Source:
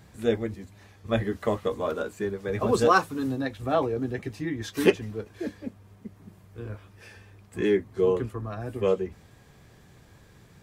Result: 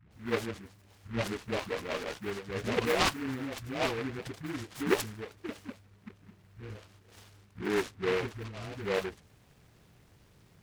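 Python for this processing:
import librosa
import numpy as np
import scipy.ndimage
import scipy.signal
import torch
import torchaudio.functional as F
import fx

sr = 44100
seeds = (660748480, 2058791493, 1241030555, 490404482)

y = fx.dispersion(x, sr, late='highs', ms=121.0, hz=540.0)
y = fx.noise_mod_delay(y, sr, seeds[0], noise_hz=1500.0, depth_ms=0.17)
y = y * 10.0 ** (-7.0 / 20.0)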